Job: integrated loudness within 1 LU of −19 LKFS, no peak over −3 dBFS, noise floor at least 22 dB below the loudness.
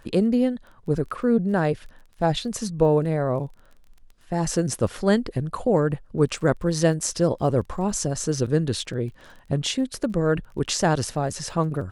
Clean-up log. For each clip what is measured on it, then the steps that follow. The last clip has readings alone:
crackle rate 20 per second; integrated loudness −24.0 LKFS; sample peak −6.5 dBFS; target loudness −19.0 LKFS
→ click removal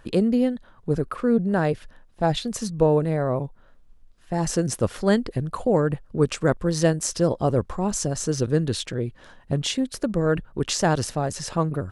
crackle rate 0 per second; integrated loudness −24.0 LKFS; sample peak −6.5 dBFS; target loudness −19.0 LKFS
→ level +5 dB
brickwall limiter −3 dBFS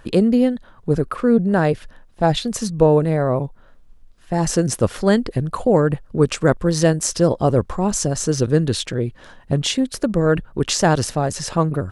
integrated loudness −19.5 LKFS; sample peak −3.0 dBFS; background noise floor −48 dBFS

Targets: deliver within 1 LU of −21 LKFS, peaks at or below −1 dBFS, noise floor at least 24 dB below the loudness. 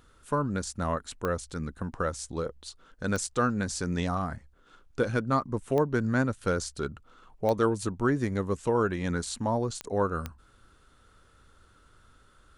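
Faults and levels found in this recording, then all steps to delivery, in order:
number of clicks 6; integrated loudness −30.0 LKFS; sample peak −11.5 dBFS; target loudness −21.0 LKFS
→ click removal
level +9 dB

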